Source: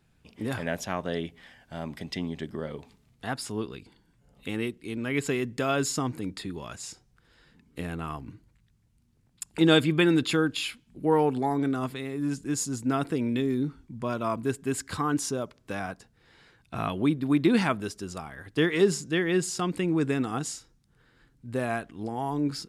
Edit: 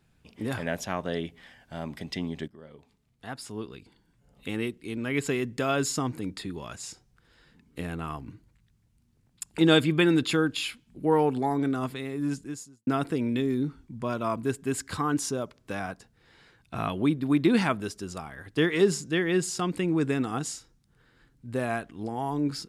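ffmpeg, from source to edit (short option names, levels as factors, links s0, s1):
-filter_complex "[0:a]asplit=3[s0][s1][s2];[s0]atrim=end=2.48,asetpts=PTS-STARTPTS,afade=t=out:st=2.476:d=0.004:c=hsin:silence=0.141254[s3];[s1]atrim=start=2.48:end=12.87,asetpts=PTS-STARTPTS,afade=t=in:d=2.02:silence=0.141254,afade=t=out:st=9.85:d=0.54:c=qua[s4];[s2]atrim=start=12.87,asetpts=PTS-STARTPTS,afade=t=in:d=0.004:c=hsin[s5];[s3][s4][s5]concat=n=3:v=0:a=1"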